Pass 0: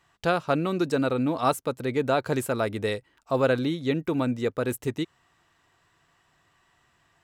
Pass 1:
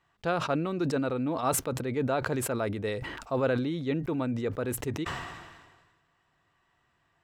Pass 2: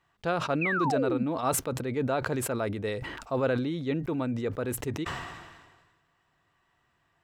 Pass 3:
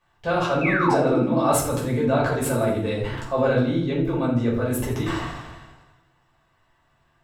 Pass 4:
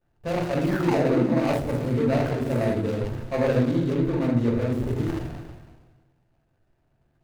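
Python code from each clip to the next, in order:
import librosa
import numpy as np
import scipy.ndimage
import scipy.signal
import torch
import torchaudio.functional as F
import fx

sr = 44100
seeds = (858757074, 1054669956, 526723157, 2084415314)

y1 = fx.high_shelf(x, sr, hz=5400.0, db=-11.5)
y1 = fx.sustainer(y1, sr, db_per_s=41.0)
y1 = F.gain(torch.from_numpy(y1), -5.0).numpy()
y2 = fx.spec_paint(y1, sr, seeds[0], shape='fall', start_s=0.61, length_s=0.63, low_hz=200.0, high_hz=2700.0, level_db=-29.0)
y3 = fx.echo_feedback(y2, sr, ms=82, feedback_pct=50, wet_db=-13.5)
y3 = fx.room_shoebox(y3, sr, seeds[1], volume_m3=360.0, walls='furnished', distance_m=5.5)
y3 = F.gain(torch.from_numpy(y3), -3.0).numpy()
y4 = scipy.signal.medfilt(y3, 41)
y4 = y4 + 10.0 ** (-17.0 / 20.0) * np.pad(y4, (int(327 * sr / 1000.0), 0))[:len(y4)]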